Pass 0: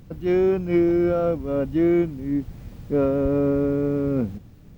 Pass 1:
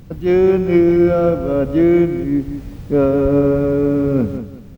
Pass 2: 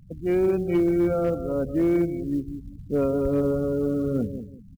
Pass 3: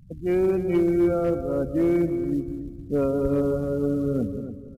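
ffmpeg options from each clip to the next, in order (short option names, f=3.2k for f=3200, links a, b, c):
-af "aecho=1:1:186|372|558:0.316|0.0854|0.0231,volume=6.5dB"
-af "afftfilt=real='re*gte(hypot(re,im),0.0501)':imag='im*gte(hypot(re,im),0.0501)':win_size=1024:overlap=0.75,asoftclip=type=hard:threshold=-6.5dB,acrusher=bits=9:mode=log:mix=0:aa=0.000001,volume=-9dB"
-filter_complex "[0:a]asplit=2[a][b];[b]adelay=282,lowpass=f=1.9k:p=1,volume=-10.5dB,asplit=2[c][d];[d]adelay=282,lowpass=f=1.9k:p=1,volume=0.29,asplit=2[e][f];[f]adelay=282,lowpass=f=1.9k:p=1,volume=0.29[g];[c][e][g]amix=inputs=3:normalize=0[h];[a][h]amix=inputs=2:normalize=0,aresample=32000,aresample=44100"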